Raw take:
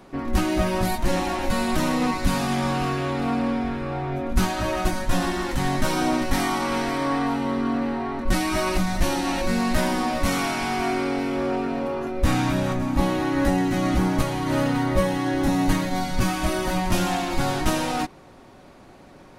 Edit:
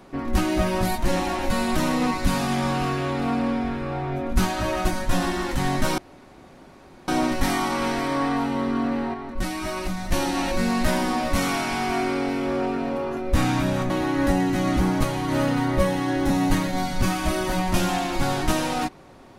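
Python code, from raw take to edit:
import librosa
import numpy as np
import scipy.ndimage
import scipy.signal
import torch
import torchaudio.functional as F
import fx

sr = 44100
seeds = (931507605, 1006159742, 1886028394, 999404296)

y = fx.edit(x, sr, fx.insert_room_tone(at_s=5.98, length_s=1.1),
    fx.clip_gain(start_s=8.04, length_s=0.98, db=-5.5),
    fx.cut(start_s=12.8, length_s=0.28), tone=tone)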